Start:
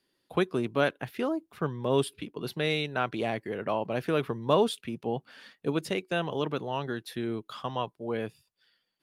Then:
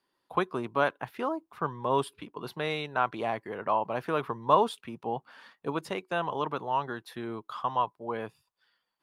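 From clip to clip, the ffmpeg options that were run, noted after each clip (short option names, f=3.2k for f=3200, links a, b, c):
-af "equalizer=f=1k:t=o:w=1.1:g=14,volume=-6dB"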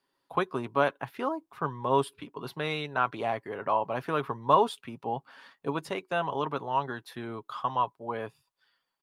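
-af "aecho=1:1:7.3:0.31"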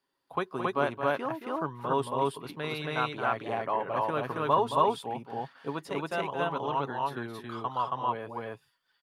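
-af "aecho=1:1:221.6|274.1:0.355|1,volume=-3.5dB"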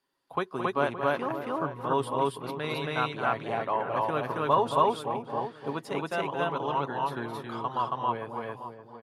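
-filter_complex "[0:a]asplit=2[a][b];[b]adelay=570,lowpass=f=1k:p=1,volume=-9.5dB,asplit=2[c][d];[d]adelay=570,lowpass=f=1k:p=1,volume=0.32,asplit=2[e][f];[f]adelay=570,lowpass=f=1k:p=1,volume=0.32,asplit=2[g][h];[h]adelay=570,lowpass=f=1k:p=1,volume=0.32[i];[a][c][e][g][i]amix=inputs=5:normalize=0,volume=1.5dB" -ar 48000 -c:a libmp3lame -b:a 64k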